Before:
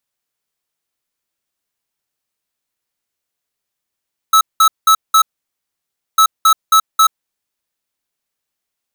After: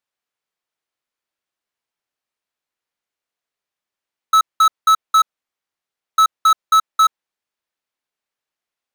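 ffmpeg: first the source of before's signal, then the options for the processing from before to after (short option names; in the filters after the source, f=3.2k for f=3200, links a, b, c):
-f lavfi -i "aevalsrc='0.376*(2*lt(mod(1300*t,1),0.5)-1)*clip(min(mod(mod(t,1.85),0.27),0.08-mod(mod(t,1.85),0.27))/0.005,0,1)*lt(mod(t,1.85),1.08)':d=3.7:s=44100"
-af "lowpass=f=2.6k:p=1,lowshelf=f=300:g=-9.5"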